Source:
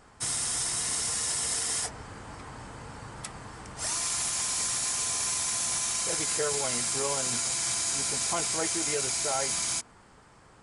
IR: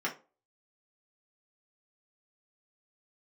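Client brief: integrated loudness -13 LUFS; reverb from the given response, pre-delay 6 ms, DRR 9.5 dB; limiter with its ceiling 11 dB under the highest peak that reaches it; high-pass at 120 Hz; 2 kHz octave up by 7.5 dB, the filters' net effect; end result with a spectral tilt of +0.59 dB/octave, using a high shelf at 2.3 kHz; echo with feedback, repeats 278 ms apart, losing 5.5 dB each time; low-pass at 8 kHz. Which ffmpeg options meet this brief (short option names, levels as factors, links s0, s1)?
-filter_complex "[0:a]highpass=120,lowpass=8000,equalizer=f=2000:t=o:g=5.5,highshelf=f=2300:g=7,alimiter=limit=0.0708:level=0:latency=1,aecho=1:1:278|556|834|1112|1390|1668|1946:0.531|0.281|0.149|0.079|0.0419|0.0222|0.0118,asplit=2[s0][s1];[1:a]atrim=start_sample=2205,adelay=6[s2];[s1][s2]afir=irnorm=-1:irlink=0,volume=0.158[s3];[s0][s3]amix=inputs=2:normalize=0,volume=6.31"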